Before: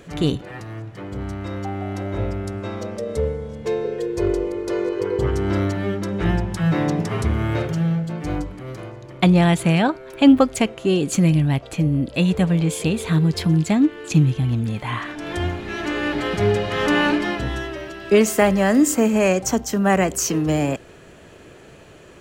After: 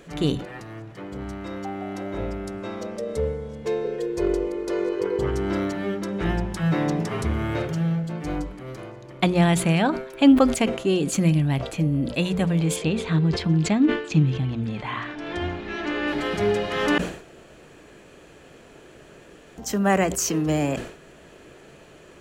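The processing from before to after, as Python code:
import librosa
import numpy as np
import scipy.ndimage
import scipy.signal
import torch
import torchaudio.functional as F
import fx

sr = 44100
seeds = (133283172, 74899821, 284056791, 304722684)

y = fx.lowpass(x, sr, hz=4900.0, slope=12, at=(12.76, 16.08))
y = fx.edit(y, sr, fx.room_tone_fill(start_s=16.98, length_s=2.6), tone=tone)
y = fx.peak_eq(y, sr, hz=98.0, db=-13.5, octaves=0.24)
y = fx.hum_notches(y, sr, base_hz=60, count=4)
y = fx.sustainer(y, sr, db_per_s=100.0)
y = y * librosa.db_to_amplitude(-2.5)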